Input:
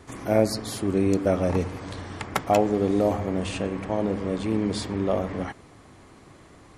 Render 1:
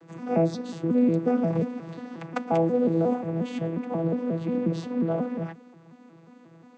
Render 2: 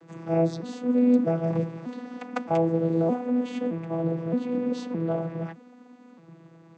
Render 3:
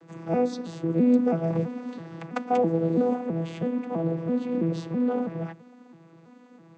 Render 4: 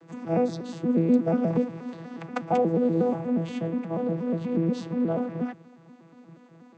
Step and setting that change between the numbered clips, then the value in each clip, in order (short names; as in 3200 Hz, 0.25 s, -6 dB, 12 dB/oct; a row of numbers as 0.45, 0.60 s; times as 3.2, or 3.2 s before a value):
arpeggiated vocoder, a note every: 0.179, 0.617, 0.329, 0.12 s